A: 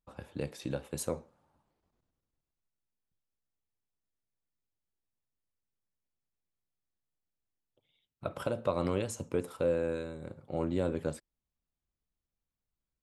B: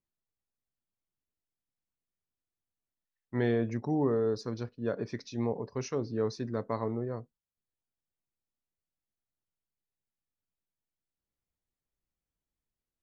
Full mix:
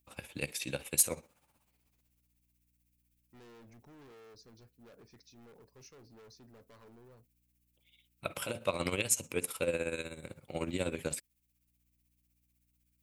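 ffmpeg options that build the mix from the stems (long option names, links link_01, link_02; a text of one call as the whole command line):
ffmpeg -i stem1.wav -i stem2.wav -filter_complex "[0:a]equalizer=frequency=2400:width_type=o:width=0.73:gain=12.5,tremolo=f=16:d=0.69,crystalizer=i=2:c=0,volume=-1.5dB,asplit=2[link_01][link_02];[1:a]aeval=exprs='val(0)+0.00141*(sin(2*PI*60*n/s)+sin(2*PI*2*60*n/s)/2+sin(2*PI*3*60*n/s)/3+sin(2*PI*4*60*n/s)/4+sin(2*PI*5*60*n/s)/5)':channel_layout=same,volume=36dB,asoftclip=hard,volume=-36dB,volume=-18.5dB[link_03];[link_02]apad=whole_len=574322[link_04];[link_03][link_04]sidechaincompress=threshold=-41dB:ratio=8:attack=46:release=820[link_05];[link_01][link_05]amix=inputs=2:normalize=0,highshelf=frequency=4100:gain=10,asoftclip=type=hard:threshold=-15.5dB" out.wav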